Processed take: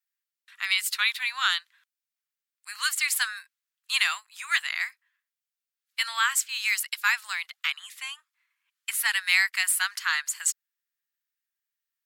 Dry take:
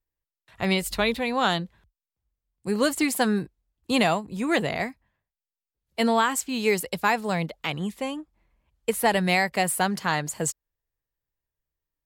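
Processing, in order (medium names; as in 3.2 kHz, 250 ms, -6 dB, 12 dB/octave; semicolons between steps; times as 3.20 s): steep high-pass 1.3 kHz 36 dB/octave; trim +3.5 dB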